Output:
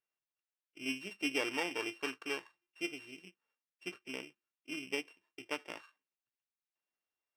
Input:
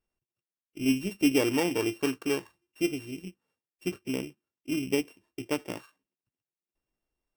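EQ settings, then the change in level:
resonant band-pass 2,000 Hz, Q 0.66
−2.0 dB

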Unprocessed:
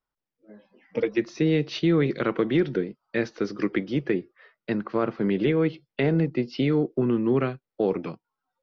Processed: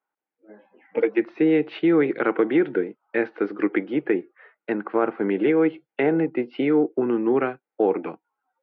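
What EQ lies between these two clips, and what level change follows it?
loudspeaker in its box 260–2,800 Hz, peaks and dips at 310 Hz +6 dB, 450 Hz +4 dB, 810 Hz +10 dB, 1,500 Hz +6 dB, 2,200 Hz +3 dB
0.0 dB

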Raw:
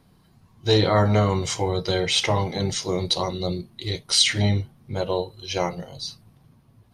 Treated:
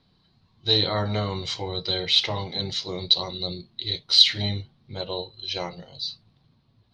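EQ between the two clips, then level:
low-pass with resonance 4,100 Hz, resonance Q 4.6
−7.5 dB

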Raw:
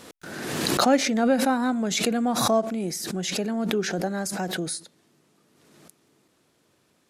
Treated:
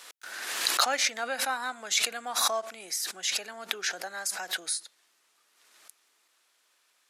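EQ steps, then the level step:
high-pass filter 1,200 Hz 12 dB per octave
+1.0 dB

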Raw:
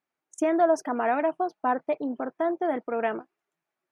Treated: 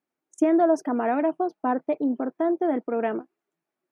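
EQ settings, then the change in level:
parametric band 280 Hz +10 dB 1.9 octaves
−3.5 dB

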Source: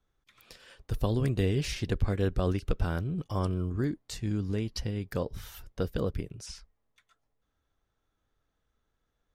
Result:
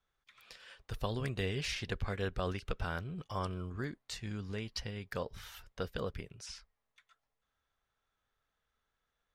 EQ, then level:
low-pass filter 2,500 Hz 6 dB per octave
tilt shelving filter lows −7.5 dB, about 780 Hz
parametric band 310 Hz −7 dB 0.27 octaves
−2.5 dB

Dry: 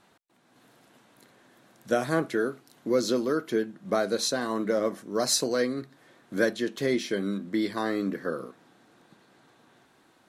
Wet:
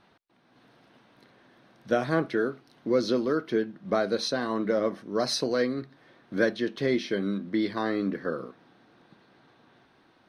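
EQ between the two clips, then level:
Savitzky-Golay smoothing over 15 samples
low-shelf EQ 95 Hz +5.5 dB
0.0 dB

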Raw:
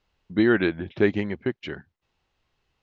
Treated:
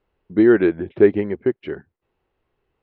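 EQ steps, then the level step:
low-pass filter 2,200 Hz 12 dB per octave
parametric band 400 Hz +9 dB 0.93 octaves
0.0 dB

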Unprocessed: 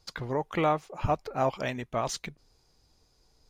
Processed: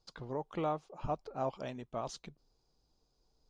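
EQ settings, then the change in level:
high-frequency loss of the air 70 metres
parametric band 87 Hz −13.5 dB 0.41 octaves
parametric band 2,000 Hz −10 dB 0.87 octaves
−7.5 dB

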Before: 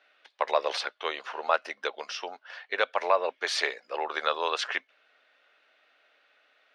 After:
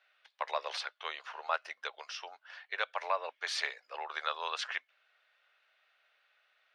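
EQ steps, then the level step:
high-pass filter 760 Hz 12 dB per octave
−6.0 dB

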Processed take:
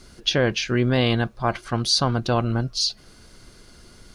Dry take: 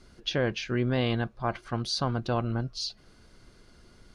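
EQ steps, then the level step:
high-shelf EQ 5,000 Hz +9.5 dB
+6.5 dB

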